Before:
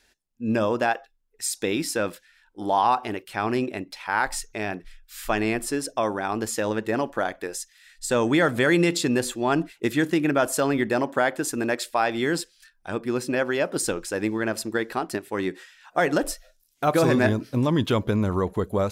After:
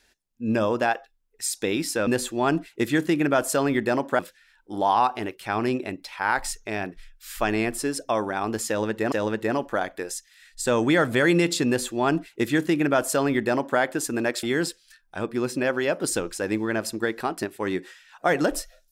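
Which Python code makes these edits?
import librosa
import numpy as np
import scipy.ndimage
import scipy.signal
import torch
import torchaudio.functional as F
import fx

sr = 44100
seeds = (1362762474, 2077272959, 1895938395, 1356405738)

y = fx.edit(x, sr, fx.repeat(start_s=6.56, length_s=0.44, count=2),
    fx.duplicate(start_s=9.11, length_s=2.12, to_s=2.07),
    fx.cut(start_s=11.87, length_s=0.28), tone=tone)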